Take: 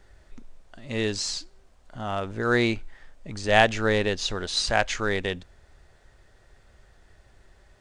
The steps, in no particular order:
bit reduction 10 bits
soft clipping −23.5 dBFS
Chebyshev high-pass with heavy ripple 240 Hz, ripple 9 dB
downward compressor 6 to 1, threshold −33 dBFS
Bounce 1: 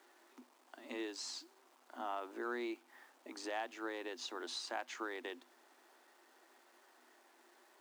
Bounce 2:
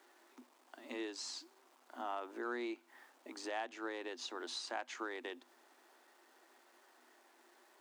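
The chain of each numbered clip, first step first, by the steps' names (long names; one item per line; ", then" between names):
downward compressor, then bit reduction, then Chebyshev high-pass with heavy ripple, then soft clipping
bit reduction, then downward compressor, then Chebyshev high-pass with heavy ripple, then soft clipping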